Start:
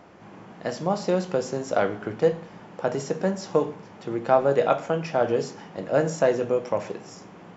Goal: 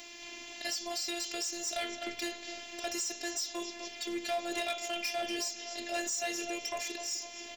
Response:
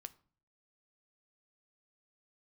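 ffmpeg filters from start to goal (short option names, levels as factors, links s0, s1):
-filter_complex "[0:a]afftfilt=real='hypot(re,im)*cos(PI*b)':imag='0':win_size=512:overlap=0.75,aexciter=amount=15.9:drive=3.2:freq=2100,asplit=2[s0][s1];[s1]adelay=254,lowpass=f=3700:p=1,volume=0.211,asplit=2[s2][s3];[s3]adelay=254,lowpass=f=3700:p=1,volume=0.53,asplit=2[s4][s5];[s5]adelay=254,lowpass=f=3700:p=1,volume=0.53,asplit=2[s6][s7];[s7]adelay=254,lowpass=f=3700:p=1,volume=0.53,asplit=2[s8][s9];[s9]adelay=254,lowpass=f=3700:p=1,volume=0.53[s10];[s0][s2][s4][s6][s8][s10]amix=inputs=6:normalize=0,alimiter=limit=0.422:level=0:latency=1:release=423,acompressor=threshold=0.01:ratio=1.5,asoftclip=type=hard:threshold=0.0447,volume=0.794"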